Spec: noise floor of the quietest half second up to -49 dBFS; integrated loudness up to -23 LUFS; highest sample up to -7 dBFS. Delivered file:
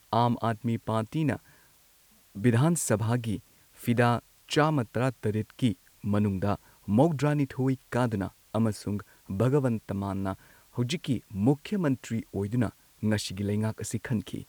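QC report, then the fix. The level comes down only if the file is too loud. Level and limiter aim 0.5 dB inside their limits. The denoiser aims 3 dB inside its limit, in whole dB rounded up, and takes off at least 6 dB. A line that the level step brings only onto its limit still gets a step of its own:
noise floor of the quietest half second -61 dBFS: pass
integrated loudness -29.0 LUFS: pass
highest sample -9.0 dBFS: pass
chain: none needed

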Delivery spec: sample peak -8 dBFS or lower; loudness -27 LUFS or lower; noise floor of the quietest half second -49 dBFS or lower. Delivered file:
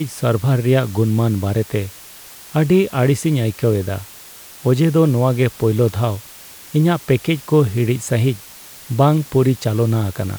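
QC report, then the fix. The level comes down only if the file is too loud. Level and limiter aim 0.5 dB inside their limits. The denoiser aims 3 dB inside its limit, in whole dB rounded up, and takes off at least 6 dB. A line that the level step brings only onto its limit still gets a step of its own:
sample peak -3.0 dBFS: fail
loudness -17.5 LUFS: fail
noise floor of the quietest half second -39 dBFS: fail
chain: noise reduction 6 dB, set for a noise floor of -39 dBFS; trim -10 dB

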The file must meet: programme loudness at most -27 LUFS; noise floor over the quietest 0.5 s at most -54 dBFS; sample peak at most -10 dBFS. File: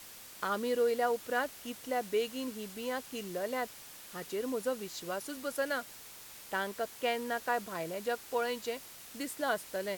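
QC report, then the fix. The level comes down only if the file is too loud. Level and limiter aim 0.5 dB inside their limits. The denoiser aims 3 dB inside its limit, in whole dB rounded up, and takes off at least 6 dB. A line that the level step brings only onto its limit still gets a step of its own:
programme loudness -35.5 LUFS: pass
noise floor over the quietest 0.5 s -50 dBFS: fail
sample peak -19.0 dBFS: pass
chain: noise reduction 7 dB, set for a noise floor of -50 dBFS

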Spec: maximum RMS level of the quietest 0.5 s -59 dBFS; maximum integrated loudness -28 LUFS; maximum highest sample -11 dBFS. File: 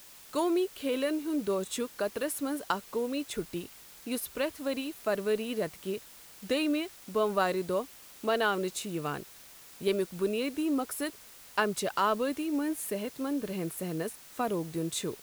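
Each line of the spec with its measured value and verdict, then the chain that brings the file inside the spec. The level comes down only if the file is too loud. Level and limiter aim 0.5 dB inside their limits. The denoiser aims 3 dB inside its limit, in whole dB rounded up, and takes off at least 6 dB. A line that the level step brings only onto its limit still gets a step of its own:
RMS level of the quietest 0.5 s -52 dBFS: fail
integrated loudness -32.0 LUFS: pass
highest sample -13.5 dBFS: pass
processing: noise reduction 10 dB, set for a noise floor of -52 dBFS

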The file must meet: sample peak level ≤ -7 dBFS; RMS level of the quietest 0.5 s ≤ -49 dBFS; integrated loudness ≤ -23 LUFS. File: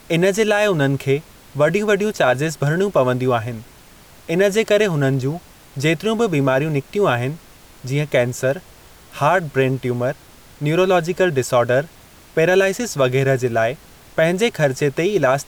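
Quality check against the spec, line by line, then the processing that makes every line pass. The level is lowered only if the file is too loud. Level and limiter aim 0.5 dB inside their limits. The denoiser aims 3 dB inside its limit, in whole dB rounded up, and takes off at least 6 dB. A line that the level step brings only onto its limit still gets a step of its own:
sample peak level -5.5 dBFS: fail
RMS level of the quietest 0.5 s -45 dBFS: fail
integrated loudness -18.5 LUFS: fail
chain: trim -5 dB

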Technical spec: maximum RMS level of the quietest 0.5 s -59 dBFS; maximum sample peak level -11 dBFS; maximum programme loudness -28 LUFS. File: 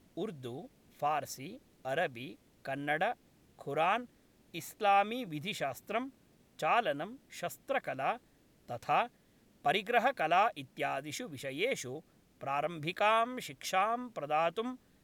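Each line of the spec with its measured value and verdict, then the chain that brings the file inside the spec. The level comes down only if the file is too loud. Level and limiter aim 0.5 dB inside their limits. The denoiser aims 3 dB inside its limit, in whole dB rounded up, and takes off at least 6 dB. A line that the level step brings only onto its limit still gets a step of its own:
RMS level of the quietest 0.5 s -66 dBFS: pass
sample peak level -15.5 dBFS: pass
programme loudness -34.0 LUFS: pass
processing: none needed

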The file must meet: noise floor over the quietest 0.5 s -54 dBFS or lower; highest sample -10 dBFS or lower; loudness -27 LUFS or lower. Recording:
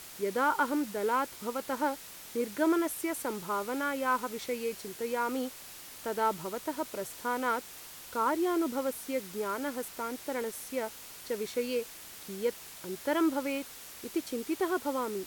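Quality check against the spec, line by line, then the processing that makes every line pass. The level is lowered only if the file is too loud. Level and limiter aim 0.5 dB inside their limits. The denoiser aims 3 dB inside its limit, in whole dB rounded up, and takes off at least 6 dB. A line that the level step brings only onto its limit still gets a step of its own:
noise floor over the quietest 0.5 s -48 dBFS: fail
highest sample -17.0 dBFS: pass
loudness -33.0 LUFS: pass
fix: noise reduction 9 dB, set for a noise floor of -48 dBFS

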